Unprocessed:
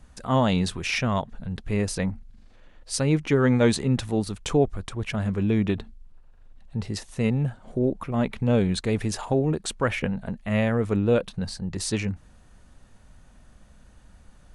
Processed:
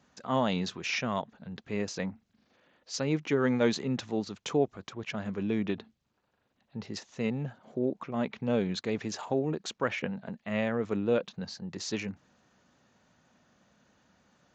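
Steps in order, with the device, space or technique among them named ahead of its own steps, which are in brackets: high-pass 120 Hz 6 dB/octave; Bluetooth headset (high-pass 150 Hz 12 dB/octave; resampled via 16 kHz; trim -5 dB; SBC 64 kbps 16 kHz)

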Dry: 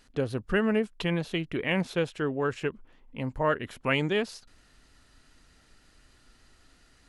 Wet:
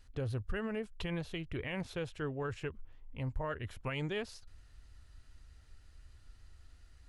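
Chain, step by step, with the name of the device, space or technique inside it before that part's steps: car stereo with a boomy subwoofer (resonant low shelf 130 Hz +13 dB, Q 1.5; peak limiter -20.5 dBFS, peak gain reduction 7.5 dB); trim -8 dB

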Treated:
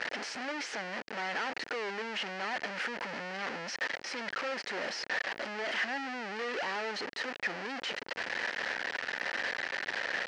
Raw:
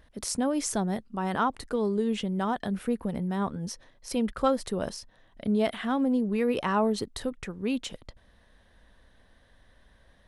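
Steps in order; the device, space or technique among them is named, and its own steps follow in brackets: home computer beeper (one-bit comparator; cabinet simulation 530–4600 Hz, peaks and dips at 650 Hz -4 dB, 1.1 kHz -7 dB, 1.8 kHz +5 dB, 3.6 kHz -9 dB)

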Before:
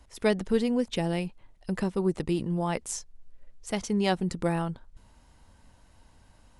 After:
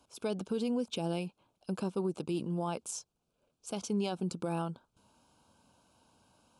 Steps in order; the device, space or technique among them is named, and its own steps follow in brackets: PA system with an anti-feedback notch (high-pass 160 Hz 12 dB/octave; Butterworth band-stop 1.9 kHz, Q 2.4; peak limiter -21.5 dBFS, peak gain reduction 8.5 dB); trim -3.5 dB

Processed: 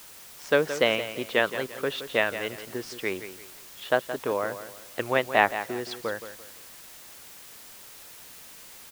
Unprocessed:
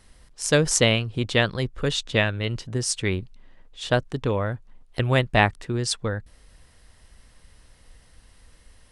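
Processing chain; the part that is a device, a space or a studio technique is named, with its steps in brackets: wax cylinder (band-pass 380–2400 Hz; wow and flutter; white noise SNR 17 dB); feedback delay 171 ms, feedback 33%, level -11.5 dB

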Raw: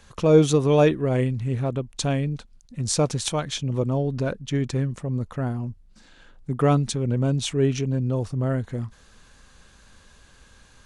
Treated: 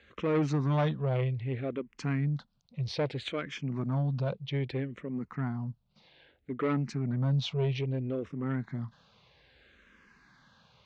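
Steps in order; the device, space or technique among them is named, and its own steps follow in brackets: barber-pole phaser into a guitar amplifier (barber-pole phaser -0.62 Hz; saturation -20.5 dBFS, distortion -11 dB; cabinet simulation 89–4400 Hz, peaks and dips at 97 Hz -7 dB, 140 Hz +4 dB, 2.1 kHz +6 dB); trim -3 dB

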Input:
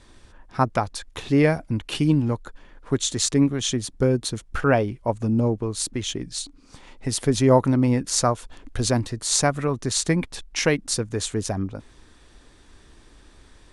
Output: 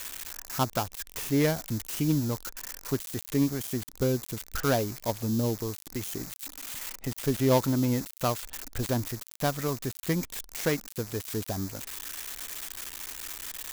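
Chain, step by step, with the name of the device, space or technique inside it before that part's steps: budget class-D amplifier (dead-time distortion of 0.15 ms; zero-crossing glitches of -13 dBFS); trim -6.5 dB

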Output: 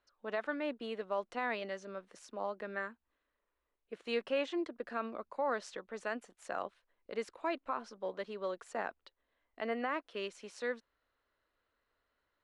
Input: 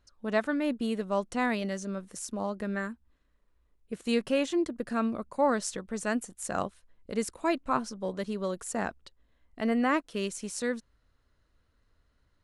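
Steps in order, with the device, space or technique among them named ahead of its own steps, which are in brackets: DJ mixer with the lows and highs turned down (three-band isolator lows -19 dB, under 350 Hz, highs -22 dB, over 4.3 kHz; peak limiter -21.5 dBFS, peak gain reduction 8 dB); trim -3 dB

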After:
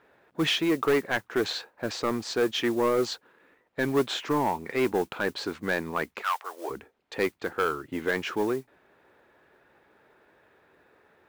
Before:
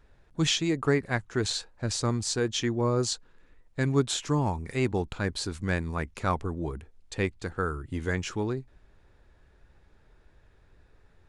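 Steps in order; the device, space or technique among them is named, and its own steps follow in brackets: carbon microphone (band-pass 320–2700 Hz; saturation -24.5 dBFS, distortion -12 dB; modulation noise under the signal 23 dB); 6.21–6.69 s: high-pass 1.2 kHz -> 410 Hz 24 dB/octave; trim +7.5 dB

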